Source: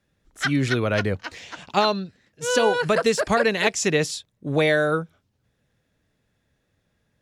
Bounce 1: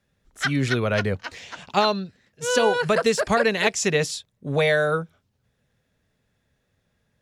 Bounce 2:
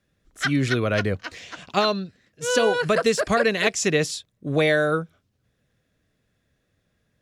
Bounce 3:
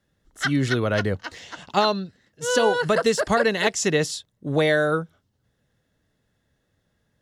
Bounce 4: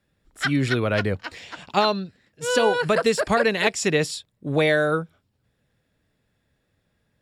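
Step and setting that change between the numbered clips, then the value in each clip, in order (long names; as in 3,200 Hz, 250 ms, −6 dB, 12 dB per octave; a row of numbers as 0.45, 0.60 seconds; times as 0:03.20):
notch filter, centre frequency: 310, 880, 2,400, 6,200 Hertz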